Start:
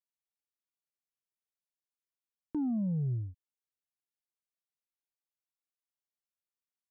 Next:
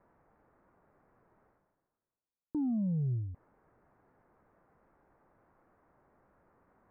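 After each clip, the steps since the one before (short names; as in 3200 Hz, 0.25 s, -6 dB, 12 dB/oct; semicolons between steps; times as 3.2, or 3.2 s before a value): Bessel low-pass 910 Hz, order 8; reverse; upward compressor, threshold -38 dBFS; reverse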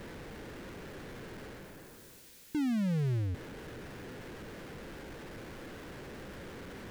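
power-law curve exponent 0.35; band shelf 900 Hz -9 dB 1.3 oct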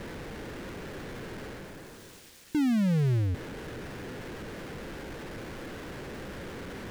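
median filter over 3 samples; gain +5.5 dB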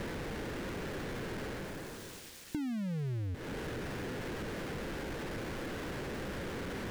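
compressor 8:1, threshold -38 dBFS, peak gain reduction 13.5 dB; gain +2.5 dB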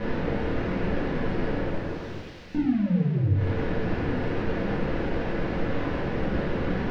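air absorption 250 m; shoebox room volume 170 m³, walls mixed, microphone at 1.9 m; gain +3.5 dB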